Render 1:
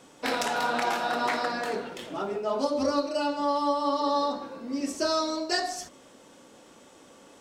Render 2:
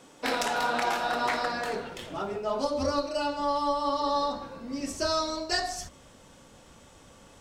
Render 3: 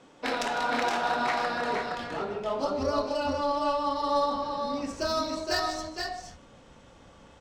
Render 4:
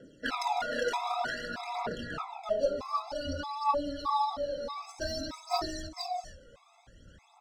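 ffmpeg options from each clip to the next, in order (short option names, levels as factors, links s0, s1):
-af "asubboost=boost=9.5:cutoff=100"
-filter_complex "[0:a]asplit=2[s0][s1];[s1]aecho=0:1:153|467|493:0.251|0.596|0.299[s2];[s0][s2]amix=inputs=2:normalize=0,adynamicsmooth=sensitivity=3:basefreq=5300,volume=0.891"
-af "aphaser=in_gain=1:out_gain=1:delay=2.1:decay=0.66:speed=0.54:type=triangular,afftfilt=real='re*gt(sin(2*PI*1.6*pts/sr)*(1-2*mod(floor(b*sr/1024/670),2)),0)':imag='im*gt(sin(2*PI*1.6*pts/sr)*(1-2*mod(floor(b*sr/1024/670),2)),0)':win_size=1024:overlap=0.75,volume=0.668"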